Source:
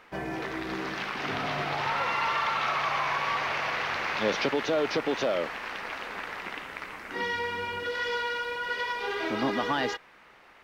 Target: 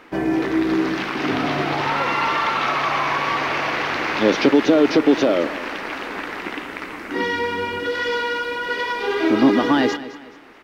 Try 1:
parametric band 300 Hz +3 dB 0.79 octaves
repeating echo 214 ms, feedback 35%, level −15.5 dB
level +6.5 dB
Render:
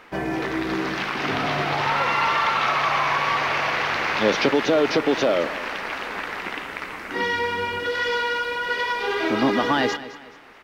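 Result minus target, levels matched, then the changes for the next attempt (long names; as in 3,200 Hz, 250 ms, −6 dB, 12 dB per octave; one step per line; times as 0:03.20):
250 Hz band −5.0 dB
change: parametric band 300 Hz +12 dB 0.79 octaves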